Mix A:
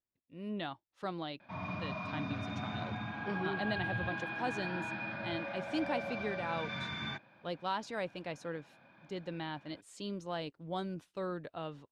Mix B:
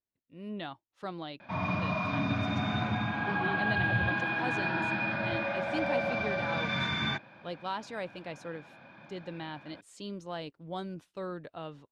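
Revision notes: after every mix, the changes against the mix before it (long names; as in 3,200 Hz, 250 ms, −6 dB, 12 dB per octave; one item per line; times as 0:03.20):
background +8.5 dB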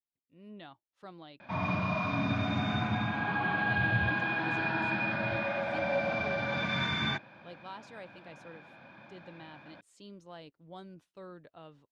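speech −9.5 dB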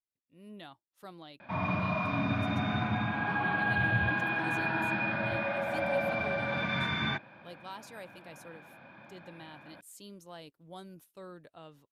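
background: add low-pass filter 2,900 Hz 12 dB per octave
master: remove high-frequency loss of the air 120 metres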